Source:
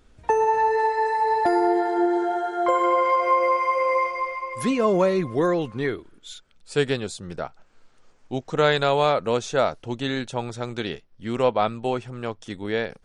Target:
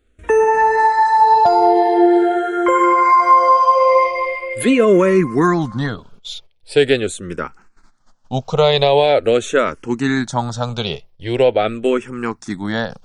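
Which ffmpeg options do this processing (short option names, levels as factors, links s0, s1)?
-filter_complex "[0:a]agate=range=0.178:threshold=0.00355:ratio=16:detection=peak,alimiter=level_in=3.76:limit=0.891:release=50:level=0:latency=1,asplit=2[s0][s1];[s1]afreqshift=-0.43[s2];[s0][s2]amix=inputs=2:normalize=1"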